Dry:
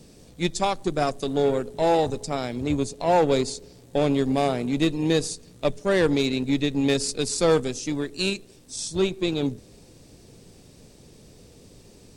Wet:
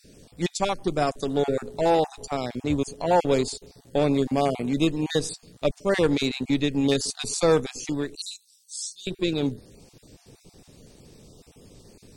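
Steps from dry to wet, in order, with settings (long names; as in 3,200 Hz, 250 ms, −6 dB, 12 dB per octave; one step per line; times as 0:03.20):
time-frequency cells dropped at random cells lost 22%
0:08.15–0:09.07: inverse Chebyshev high-pass filter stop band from 1,600 Hz, stop band 50 dB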